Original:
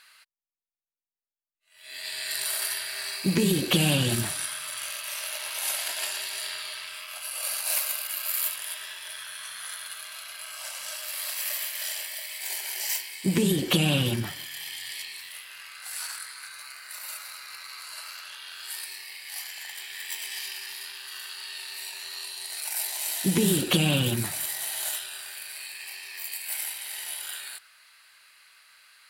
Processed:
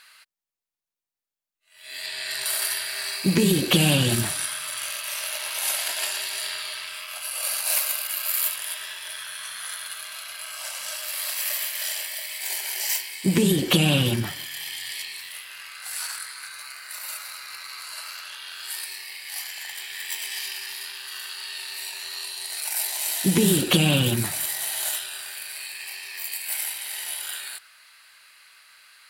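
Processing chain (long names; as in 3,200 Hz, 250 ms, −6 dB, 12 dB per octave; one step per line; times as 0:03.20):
0:02.06–0:02.46: high-shelf EQ 8,500 Hz −10.5 dB
level +3.5 dB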